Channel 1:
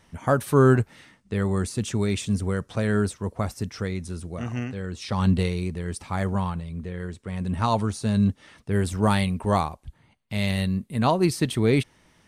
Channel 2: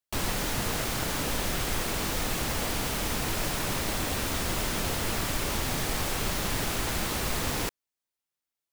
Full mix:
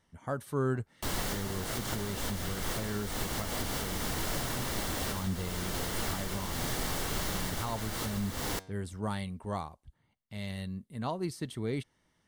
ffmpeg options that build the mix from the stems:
-filter_complex "[0:a]volume=0.211,asplit=2[s0][s1];[1:a]acontrast=28,flanger=delay=6.1:depth=5.6:regen=90:speed=0.31:shape=triangular,adelay=900,volume=0.631[s2];[s1]apad=whole_len=424657[s3];[s2][s3]sidechaincompress=threshold=0.01:ratio=8:attack=31:release=217[s4];[s0][s4]amix=inputs=2:normalize=0,bandreject=f=2500:w=8.8"

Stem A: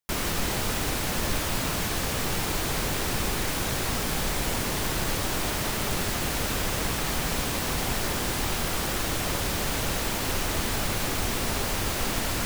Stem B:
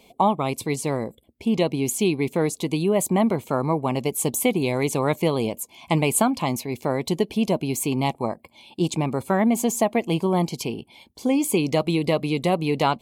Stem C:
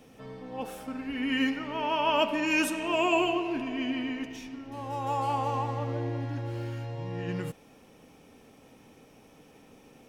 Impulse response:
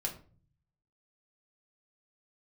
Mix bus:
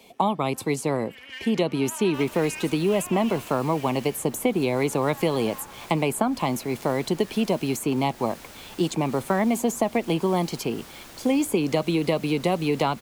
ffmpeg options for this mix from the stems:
-filter_complex "[0:a]adelay=2050,volume=0.168[s0];[1:a]volume=1.33[s1];[2:a]aeval=exprs='if(lt(val(0),0),0.251*val(0),val(0))':c=same,highpass=1100,volume=0.708[s2];[s0][s1][s2]amix=inputs=3:normalize=0,lowshelf=f=110:g=-8,acrossover=split=91|250|1800[s3][s4][s5][s6];[s3]acompressor=threshold=0.00355:ratio=4[s7];[s4]acompressor=threshold=0.0398:ratio=4[s8];[s5]acompressor=threshold=0.0891:ratio=4[s9];[s6]acompressor=threshold=0.0224:ratio=4[s10];[s7][s8][s9][s10]amix=inputs=4:normalize=0"

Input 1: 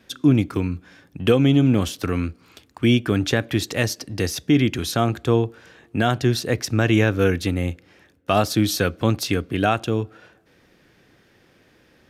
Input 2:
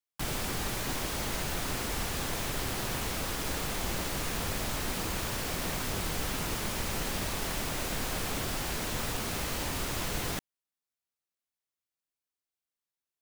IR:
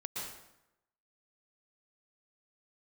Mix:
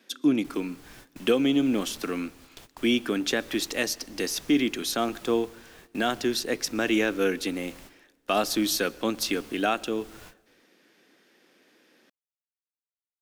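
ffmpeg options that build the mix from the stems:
-filter_complex "[0:a]highpass=f=240:w=0.5412,highpass=f=240:w=1.3066,equalizer=f=760:w=0.34:g=-5,volume=0.891,asplit=3[s0][s1][s2];[s1]volume=0.0668[s3];[1:a]tremolo=f=1.2:d=0.49,adelay=250,volume=0.178[s4];[s2]apad=whole_len=593681[s5];[s4][s5]sidechaingate=range=0.0708:threshold=0.002:ratio=16:detection=peak[s6];[2:a]atrim=start_sample=2205[s7];[s3][s7]afir=irnorm=-1:irlink=0[s8];[s0][s6][s8]amix=inputs=3:normalize=0"

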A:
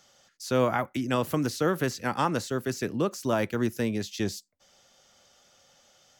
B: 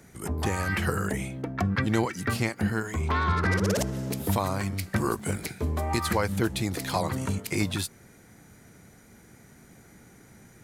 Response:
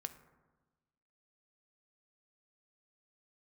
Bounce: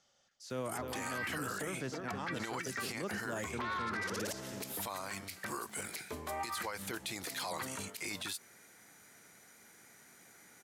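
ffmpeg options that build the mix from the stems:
-filter_complex "[0:a]lowpass=9000,volume=0.266,asplit=2[s0][s1];[s1]volume=0.355[s2];[1:a]highpass=f=1200:p=1,alimiter=limit=0.0708:level=0:latency=1:release=77,adelay=500,volume=1[s3];[s2]aecho=0:1:313:1[s4];[s0][s3][s4]amix=inputs=3:normalize=0,alimiter=level_in=1.88:limit=0.0631:level=0:latency=1:release=20,volume=0.531"

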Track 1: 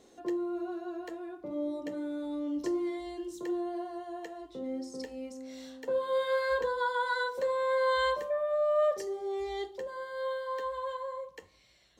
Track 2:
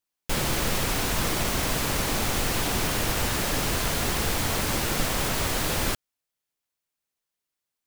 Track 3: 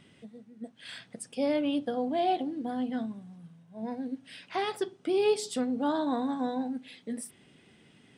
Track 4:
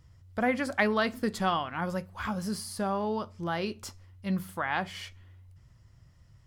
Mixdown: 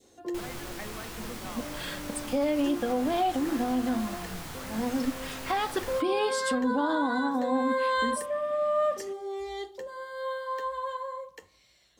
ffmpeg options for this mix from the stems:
-filter_complex "[0:a]highshelf=f=5000:g=7.5,volume=0.841[s0];[1:a]flanger=delay=20:depth=2.5:speed=2,adelay=50,volume=0.251[s1];[2:a]aecho=1:1:3.7:0.48,adelay=950,volume=1.41[s2];[3:a]volume=0.126,asplit=2[s3][s4];[s4]apad=whole_len=528994[s5];[s0][s5]sidechaincompress=threshold=0.00282:ratio=8:attack=16:release=390[s6];[s6][s1][s2][s3]amix=inputs=4:normalize=0,adynamicequalizer=threshold=0.00708:dfrequency=1200:dqfactor=1.1:tfrequency=1200:tqfactor=1.1:attack=5:release=100:ratio=0.375:range=3:mode=boostabove:tftype=bell,alimiter=limit=0.119:level=0:latency=1:release=128"

